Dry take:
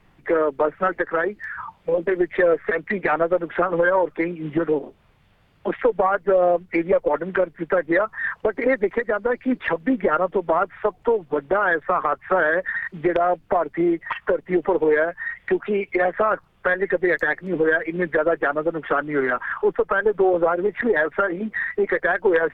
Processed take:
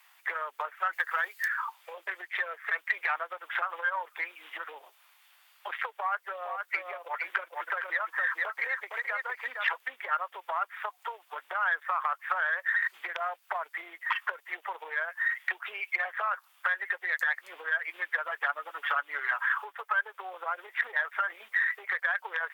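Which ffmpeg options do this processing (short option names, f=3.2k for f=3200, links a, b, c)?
-filter_complex "[0:a]asettb=1/sr,asplit=3[a][b][c];[a]atrim=end=0.934[d];[b]atrim=start=0.93:end=1.48,asetpts=PTS-STARTPTS,afade=t=in:d=0.004:c=qsin,afade=t=out:st=0.546:d=0.004:c=qsin,highshelf=f=3.4k:g=11[e];[c]atrim=start=1.476[f];[d][e]acrossfade=d=0.004:c1=hsin:c2=qsin[g];[g][f]acrossfade=d=0.004:c1=qsin:c2=hsin,asettb=1/sr,asplit=3[h][i][j];[h]atrim=end=5.914[k];[i]atrim=start=5.91:end=9.75,asetpts=PTS-STARTPTS,afade=t=in:d=0.004:c=qsin,afade=t=out:st=3.836:d=0.004:c=qsin,aecho=1:1:461:0.531,atrim=end_sample=169344[l];[j]atrim=start=9.746[m];[k][l]acrossfade=d=0.004:c1=hsin:c2=qsin[n];[n][m]acrossfade=d=0.004:c1=qsin:c2=hsin,asettb=1/sr,asplit=3[o][p][q];[o]atrim=end=18.244[r];[p]atrim=start=18.24:end=20.01,asetpts=PTS-STARTPTS,afade=t=in:d=0.004:c=qsin,afade=t=out:st=1.766:d=0.004:c=qsin,aecho=1:1:7:0.63,atrim=end_sample=78057[s];[q]atrim=start=20.006[t];[r][s]acrossfade=d=0.004:c1=hsin:c2=qsin[u];[u][t]acrossfade=d=0.004:c1=qsin:c2=hsin,aemphasis=mode=production:type=75fm,acompressor=threshold=-23dB:ratio=6,highpass=f=900:w=0.5412,highpass=f=900:w=1.3066"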